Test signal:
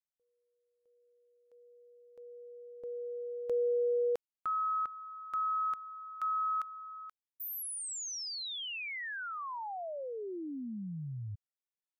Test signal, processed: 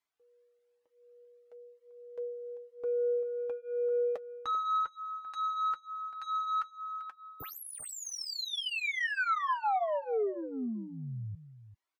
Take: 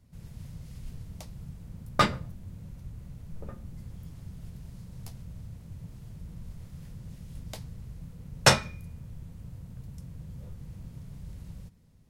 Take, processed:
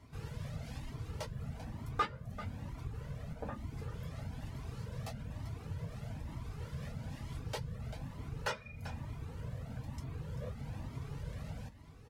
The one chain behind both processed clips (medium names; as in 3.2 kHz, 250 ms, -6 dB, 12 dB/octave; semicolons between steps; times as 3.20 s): compression 8:1, threshold -37 dBFS; reverb removal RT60 0.53 s; overdrive pedal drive 26 dB, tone 1.3 kHz, clips at -17 dBFS; comb of notches 180 Hz; on a send: delay 391 ms -13 dB; on the sum: Shepard-style flanger rising 1.1 Hz; trim +2.5 dB